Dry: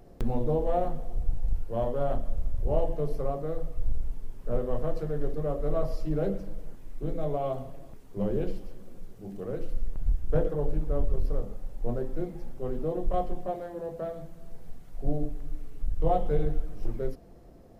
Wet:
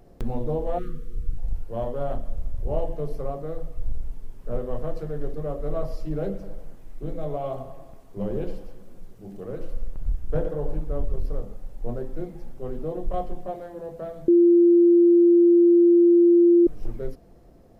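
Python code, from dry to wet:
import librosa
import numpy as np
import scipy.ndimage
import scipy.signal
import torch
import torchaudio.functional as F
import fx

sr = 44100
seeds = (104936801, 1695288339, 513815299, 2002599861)

y = fx.spec_erase(x, sr, start_s=0.78, length_s=0.6, low_hz=510.0, high_hz=1100.0)
y = fx.echo_banded(y, sr, ms=94, feedback_pct=64, hz=950.0, wet_db=-9, at=(6.41, 10.8), fade=0.02)
y = fx.edit(y, sr, fx.bleep(start_s=14.28, length_s=2.39, hz=345.0, db=-12.0), tone=tone)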